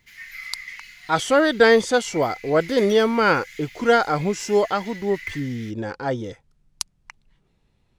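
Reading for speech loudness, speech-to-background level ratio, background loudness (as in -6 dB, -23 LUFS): -21.0 LUFS, 17.5 dB, -38.5 LUFS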